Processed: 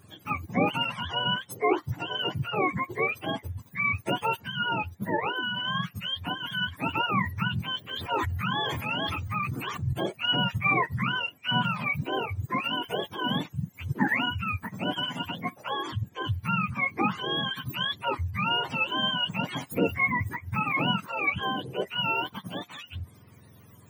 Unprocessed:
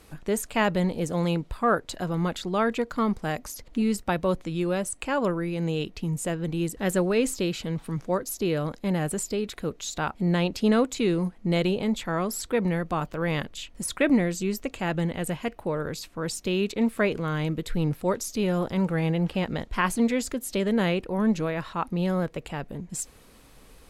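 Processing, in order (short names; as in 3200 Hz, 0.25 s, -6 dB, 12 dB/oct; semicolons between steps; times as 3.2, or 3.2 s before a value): spectrum mirrored in octaves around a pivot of 710 Hz; 7.83–9.93 sustainer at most 24 dB/s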